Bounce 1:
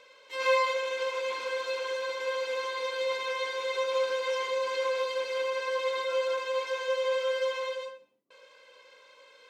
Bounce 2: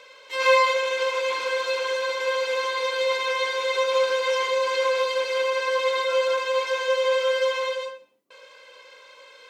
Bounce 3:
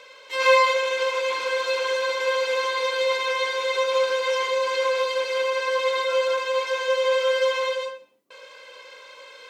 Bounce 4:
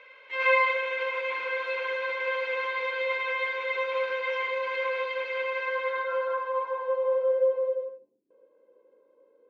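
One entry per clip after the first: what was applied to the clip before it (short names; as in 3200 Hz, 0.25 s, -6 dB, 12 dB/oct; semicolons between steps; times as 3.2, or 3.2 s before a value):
low shelf 280 Hz -7.5 dB; gain +8 dB
vocal rider within 4 dB 2 s
low-pass sweep 2200 Hz -> 340 Hz, 5.6–8.27; gain -8 dB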